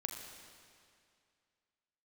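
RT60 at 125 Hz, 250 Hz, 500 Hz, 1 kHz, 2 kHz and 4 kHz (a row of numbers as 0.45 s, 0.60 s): 2.3 s, 2.3 s, 2.3 s, 2.3 s, 2.3 s, 2.1 s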